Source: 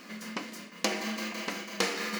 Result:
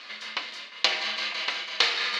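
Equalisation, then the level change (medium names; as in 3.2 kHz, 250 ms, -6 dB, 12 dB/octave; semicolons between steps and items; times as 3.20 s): high-pass 750 Hz 12 dB/octave; resonant low-pass 3.8 kHz, resonance Q 3.4; +4.0 dB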